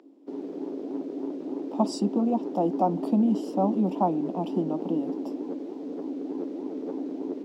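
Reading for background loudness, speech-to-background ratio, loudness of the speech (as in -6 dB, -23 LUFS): -34.0 LUFS, 6.5 dB, -27.5 LUFS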